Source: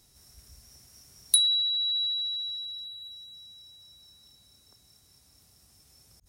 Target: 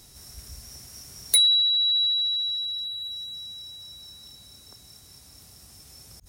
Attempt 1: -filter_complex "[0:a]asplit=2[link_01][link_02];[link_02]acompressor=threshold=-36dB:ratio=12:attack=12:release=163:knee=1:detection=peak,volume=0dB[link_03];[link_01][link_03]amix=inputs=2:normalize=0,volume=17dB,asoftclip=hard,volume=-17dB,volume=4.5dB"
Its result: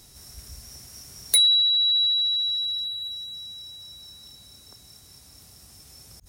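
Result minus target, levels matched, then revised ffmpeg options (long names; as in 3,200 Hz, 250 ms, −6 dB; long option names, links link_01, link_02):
downward compressor: peak gain reduction −7.5 dB
-filter_complex "[0:a]asplit=2[link_01][link_02];[link_02]acompressor=threshold=-44dB:ratio=12:attack=12:release=163:knee=1:detection=peak,volume=0dB[link_03];[link_01][link_03]amix=inputs=2:normalize=0,volume=17dB,asoftclip=hard,volume=-17dB,volume=4.5dB"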